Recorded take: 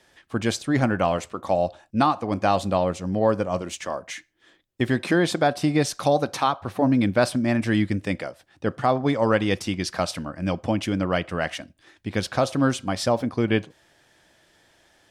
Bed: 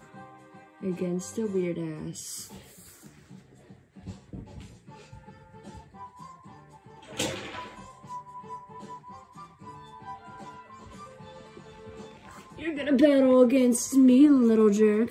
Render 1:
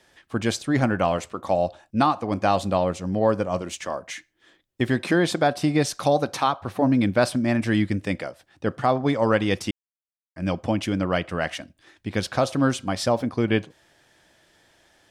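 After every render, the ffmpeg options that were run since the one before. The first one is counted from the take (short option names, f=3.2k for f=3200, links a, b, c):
-filter_complex "[0:a]asplit=3[a][b][c];[a]atrim=end=9.71,asetpts=PTS-STARTPTS,afade=t=out:st=9.706:d=0.004:c=hsin[d];[b]atrim=start=9.71:end=10.36,asetpts=PTS-STARTPTS,volume=0[e];[c]atrim=start=10.36,asetpts=PTS-STARTPTS,afade=t=in:d=0.004:c=hsin[f];[d][e][f]concat=n=3:v=0:a=1"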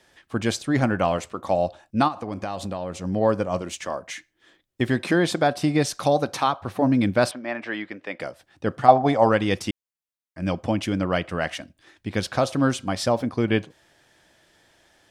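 -filter_complex "[0:a]asplit=3[a][b][c];[a]afade=t=out:st=2.07:d=0.02[d];[b]acompressor=threshold=-26dB:ratio=6:attack=3.2:release=140:knee=1:detection=peak,afade=t=in:st=2.07:d=0.02,afade=t=out:st=3.03:d=0.02[e];[c]afade=t=in:st=3.03:d=0.02[f];[d][e][f]amix=inputs=3:normalize=0,asettb=1/sr,asplit=3[g][h][i];[g]atrim=end=7.314[j];[h]atrim=start=7.31:end=8.2,asetpts=PTS-STARTPTS,afade=t=in:d=0.004:c=qsin,afade=t=out:st=0.886:d=0.004:c=qsin,highpass=520,lowpass=2.7k[k];[i]atrim=start=8.196[l];[j][k]acrossfade=d=0.004:c1=hsin:c2=qsin[m];[m][l]acrossfade=d=0.004:c1=qsin:c2=hsin,asettb=1/sr,asplit=3[n][o][p];[n]atrim=end=8.884[q];[o]atrim=start=8.88:end=9.29,asetpts=PTS-STARTPTS,afade=t=in:d=0.004:c=qsin,afade=t=out:st=0.406:d=0.004:c=qsin,equalizer=f=740:t=o:w=0.42:g=15[r];[p]atrim=start=9.286[s];[q][r]acrossfade=d=0.004:c1=hsin:c2=qsin[t];[t][s]acrossfade=d=0.004:c1=qsin:c2=hsin"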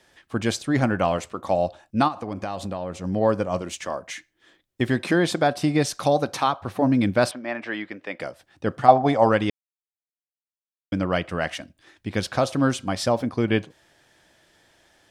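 -filter_complex "[0:a]asettb=1/sr,asplit=3[a][b][c];[a]atrim=end=2.334[d];[b]atrim=start=2.33:end=3.04,asetpts=PTS-STARTPTS,afade=t=in:d=0.004:c=qsin,afade=t=out:st=0.706:d=0.004:c=qsin,adynamicequalizer=threshold=0.00501:dfrequency=2700:dqfactor=0.7:tfrequency=2700:tqfactor=0.7:attack=5:release=100:ratio=0.375:range=2.5:mode=cutabove:tftype=highshelf[e];[c]atrim=start=3.036[f];[d][e]acrossfade=d=0.004:c1=hsin:c2=qsin[g];[g][f]acrossfade=d=0.004:c1=qsin:c2=hsin,asplit=3[h][i][j];[h]atrim=end=9.5,asetpts=PTS-STARTPTS,afade=t=out:st=9.496:d=0.004:c=hsin[k];[i]atrim=start=9.5:end=10.92,asetpts=PTS-STARTPTS,volume=0[l];[j]atrim=start=10.92,asetpts=PTS-STARTPTS,afade=t=in:d=0.004:c=hsin[m];[k][l][m]concat=n=3:v=0:a=1"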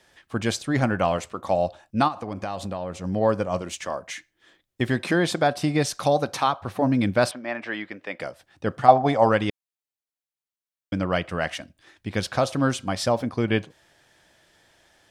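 -af "equalizer=f=300:t=o:w=0.95:g=-2.5"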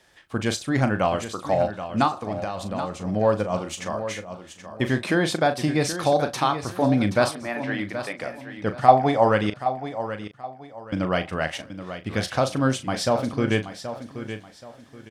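-filter_complex "[0:a]asplit=2[a][b];[b]adelay=38,volume=-10.5dB[c];[a][c]amix=inputs=2:normalize=0,aecho=1:1:777|1554|2331:0.282|0.0846|0.0254"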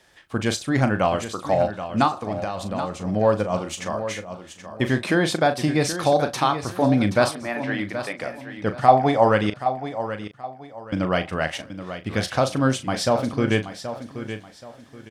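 -af "volume=1.5dB,alimiter=limit=-2dB:level=0:latency=1"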